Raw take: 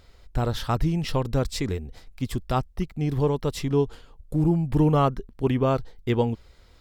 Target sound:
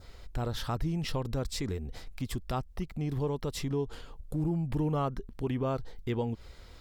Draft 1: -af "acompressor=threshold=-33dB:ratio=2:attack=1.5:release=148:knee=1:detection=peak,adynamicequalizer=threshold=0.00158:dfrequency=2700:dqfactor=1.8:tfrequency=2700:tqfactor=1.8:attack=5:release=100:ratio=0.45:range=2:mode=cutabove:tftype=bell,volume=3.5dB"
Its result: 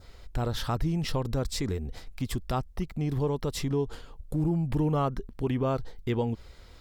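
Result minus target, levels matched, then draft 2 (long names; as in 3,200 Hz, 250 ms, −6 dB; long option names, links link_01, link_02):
downward compressor: peak gain reduction −3.5 dB
-af "acompressor=threshold=-40dB:ratio=2:attack=1.5:release=148:knee=1:detection=peak,adynamicequalizer=threshold=0.00158:dfrequency=2700:dqfactor=1.8:tfrequency=2700:tqfactor=1.8:attack=5:release=100:ratio=0.45:range=2:mode=cutabove:tftype=bell,volume=3.5dB"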